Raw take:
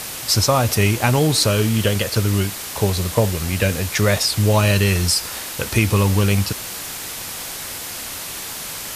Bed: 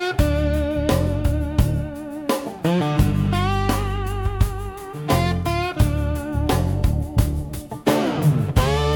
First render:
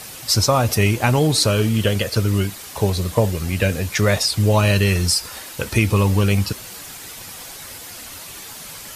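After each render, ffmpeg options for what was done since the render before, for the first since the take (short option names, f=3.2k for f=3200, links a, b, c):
-af "afftdn=nr=8:nf=-31"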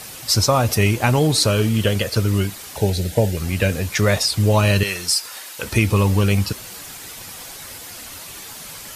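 -filter_complex "[0:a]asettb=1/sr,asplit=3[a][b][c];[a]atrim=end=2.764[d];[b]atrim=start=2.76:end=3.37,asetpts=PTS-STARTPTS,afade=t=in:d=0.004:c=qsin,afade=t=out:st=0.606:d=0.004:c=qsin,asuperstop=centerf=1100:order=4:qfactor=2.2[e];[c]atrim=start=3.366[f];[d][e]acrossfade=d=0.004:c1=hsin:c2=qsin[g];[g][f]acrossfade=d=0.004:c1=qsin:c2=hsin,asettb=1/sr,asplit=3[h][i][j];[h]atrim=end=4.834[k];[i]atrim=start=4.83:end=5.63,asetpts=PTS-STARTPTS,afade=t=in:d=0.004:c=qsin,afade=t=out:st=0.796:d=0.004:c=qsin,highpass=f=850:p=1[l];[j]atrim=start=5.626[m];[k][l]acrossfade=d=0.004:c1=hsin:c2=qsin[n];[n][m]acrossfade=d=0.004:c1=qsin:c2=hsin"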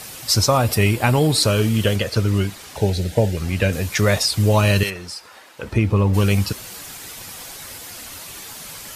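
-filter_complex "[0:a]asettb=1/sr,asplit=3[a][b][c];[a]atrim=end=0.574[d];[b]atrim=start=0.57:end=1.43,asetpts=PTS-STARTPTS,afade=t=in:d=0.004:c=qsin,afade=t=out:st=0.856:d=0.004:c=qsin,bandreject=f=6.2k:w=5.2[e];[c]atrim=start=1.426[f];[d][e]acrossfade=d=0.004:c1=hsin:c2=qsin[g];[g][f]acrossfade=d=0.004:c1=qsin:c2=hsin,asettb=1/sr,asplit=3[h][i][j];[h]atrim=end=1.964[k];[i]atrim=start=1.96:end=3.73,asetpts=PTS-STARTPTS,afade=t=in:d=0.004:c=qsin,afade=t=out:st=1.766:d=0.004:c=qsin,highshelf=f=8.4k:g=-9.5[l];[j]atrim=start=3.726[m];[k][l]acrossfade=d=0.004:c1=hsin:c2=qsin[n];[n][m]acrossfade=d=0.004:c1=qsin:c2=hsin,asplit=3[o][p][q];[o]afade=t=out:st=4.89:d=0.02[r];[p]lowpass=f=1.1k:p=1,afade=t=in:st=4.89:d=0.02,afade=t=out:st=6.13:d=0.02[s];[q]afade=t=in:st=6.13:d=0.02[t];[r][s][t]amix=inputs=3:normalize=0"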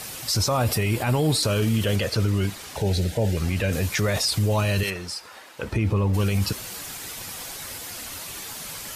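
-af "alimiter=limit=-14.5dB:level=0:latency=1:release=17"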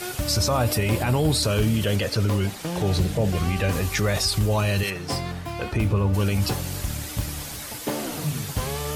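-filter_complex "[1:a]volume=-10.5dB[a];[0:a][a]amix=inputs=2:normalize=0"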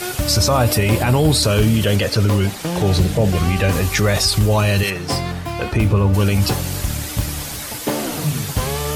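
-af "volume=6.5dB"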